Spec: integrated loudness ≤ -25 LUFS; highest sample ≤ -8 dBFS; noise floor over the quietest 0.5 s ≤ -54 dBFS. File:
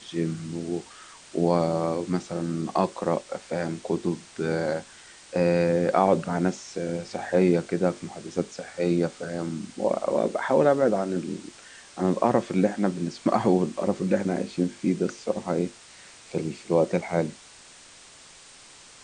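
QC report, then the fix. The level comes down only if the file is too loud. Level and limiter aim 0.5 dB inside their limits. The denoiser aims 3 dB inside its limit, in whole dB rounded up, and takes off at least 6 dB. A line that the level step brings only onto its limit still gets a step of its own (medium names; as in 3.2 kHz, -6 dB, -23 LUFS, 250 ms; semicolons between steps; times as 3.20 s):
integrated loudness -26.5 LUFS: pass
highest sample -6.0 dBFS: fail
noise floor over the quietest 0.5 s -50 dBFS: fail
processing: noise reduction 7 dB, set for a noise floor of -50 dBFS; peak limiter -8.5 dBFS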